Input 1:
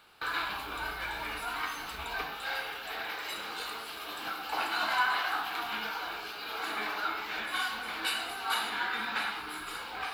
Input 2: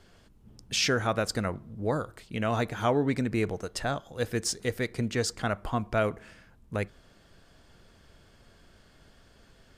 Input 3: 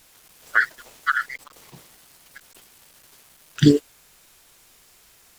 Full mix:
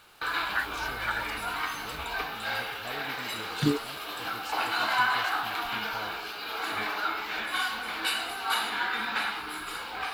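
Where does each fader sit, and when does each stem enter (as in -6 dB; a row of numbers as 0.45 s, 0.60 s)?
+3.0 dB, -18.5 dB, -11.5 dB; 0.00 s, 0.00 s, 0.00 s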